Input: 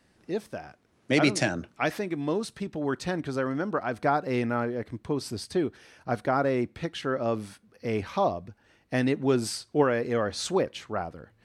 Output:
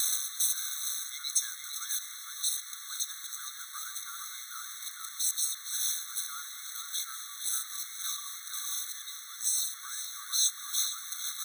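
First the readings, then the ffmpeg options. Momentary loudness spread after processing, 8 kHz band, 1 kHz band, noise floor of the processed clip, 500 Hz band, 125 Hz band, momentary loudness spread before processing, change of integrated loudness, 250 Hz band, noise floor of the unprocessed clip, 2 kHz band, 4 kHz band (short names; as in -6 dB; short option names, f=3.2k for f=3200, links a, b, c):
10 LU, +13.0 dB, -16.5 dB, -45 dBFS, under -40 dB, under -40 dB, 10 LU, -3.5 dB, under -40 dB, -66 dBFS, -12.0 dB, +4.0 dB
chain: -filter_complex "[0:a]aeval=exprs='val(0)+0.5*0.0447*sgn(val(0))':c=same,aecho=1:1:0.8:0.87,asplit=2[a][b];[b]adelay=459,lowpass=f=2.1k:p=1,volume=-3dB,asplit=2[c][d];[d]adelay=459,lowpass=f=2.1k:p=1,volume=0.39,asplit=2[e][f];[f]adelay=459,lowpass=f=2.1k:p=1,volume=0.39,asplit=2[g][h];[h]adelay=459,lowpass=f=2.1k:p=1,volume=0.39,asplit=2[i][j];[j]adelay=459,lowpass=f=2.1k:p=1,volume=0.39[k];[c][e][g][i][k]amix=inputs=5:normalize=0[l];[a][l]amix=inputs=2:normalize=0,adynamicequalizer=threshold=0.0112:dfrequency=170:dqfactor=2.2:tfrequency=170:tqfactor=2.2:attack=5:release=100:ratio=0.375:range=3.5:mode=boostabove:tftype=bell,areverse,acompressor=threshold=-33dB:ratio=5,areverse,firequalizer=gain_entry='entry(130,0);entry(270,-3);entry(440,-30);entry(800,3);entry(1200,-13);entry(4800,12)':delay=0.05:min_phase=1,acontrast=26,acrusher=bits=6:mix=0:aa=0.000001,afftfilt=real='re*eq(mod(floor(b*sr/1024/1100),2),1)':imag='im*eq(mod(floor(b*sr/1024/1100),2),1)':win_size=1024:overlap=0.75"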